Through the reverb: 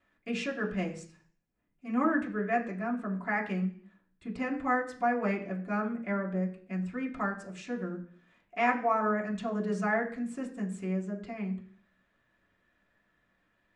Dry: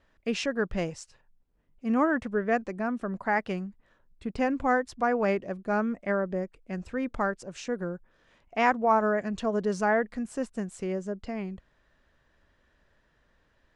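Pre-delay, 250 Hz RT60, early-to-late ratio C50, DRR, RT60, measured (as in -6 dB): 3 ms, 0.60 s, 11.5 dB, -2.0 dB, 0.50 s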